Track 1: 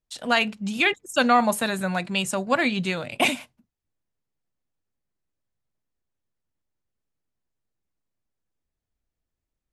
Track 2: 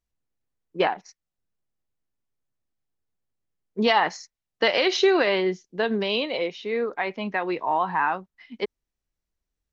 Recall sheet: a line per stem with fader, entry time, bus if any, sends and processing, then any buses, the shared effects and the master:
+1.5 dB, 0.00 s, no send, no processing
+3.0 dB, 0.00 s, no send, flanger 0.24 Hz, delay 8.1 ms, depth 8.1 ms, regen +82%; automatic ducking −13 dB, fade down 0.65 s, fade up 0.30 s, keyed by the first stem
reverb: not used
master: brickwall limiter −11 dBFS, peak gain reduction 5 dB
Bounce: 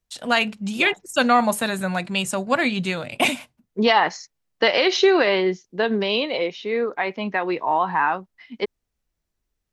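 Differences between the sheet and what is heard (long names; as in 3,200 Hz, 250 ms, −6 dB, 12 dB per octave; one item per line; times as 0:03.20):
stem 2: missing flanger 0.24 Hz, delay 8.1 ms, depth 8.1 ms, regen +82%
master: missing brickwall limiter −11 dBFS, peak gain reduction 5 dB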